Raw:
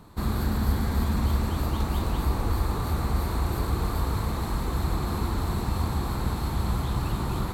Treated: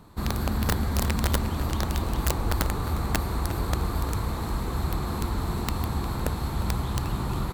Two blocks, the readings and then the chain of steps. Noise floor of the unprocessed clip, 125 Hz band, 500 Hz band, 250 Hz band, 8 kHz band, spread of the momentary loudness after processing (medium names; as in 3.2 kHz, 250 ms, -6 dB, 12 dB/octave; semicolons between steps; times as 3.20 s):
-31 dBFS, -1.0 dB, +0.5 dB, -0.5 dB, +5.0 dB, 4 LU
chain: integer overflow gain 16 dB; echo from a far wall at 61 m, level -11 dB; trim -1 dB